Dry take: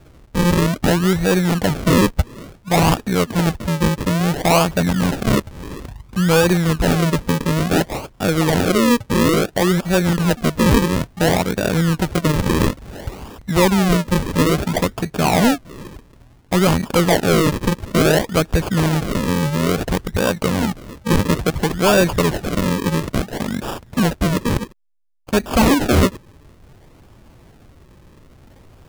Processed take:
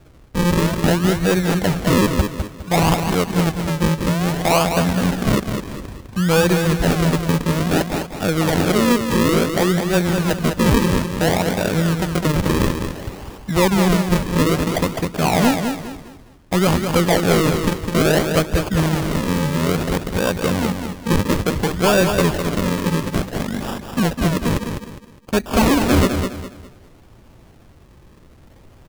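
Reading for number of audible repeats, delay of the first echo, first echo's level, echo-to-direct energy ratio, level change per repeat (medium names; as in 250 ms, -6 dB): 3, 205 ms, -6.5 dB, -6.0 dB, -10.0 dB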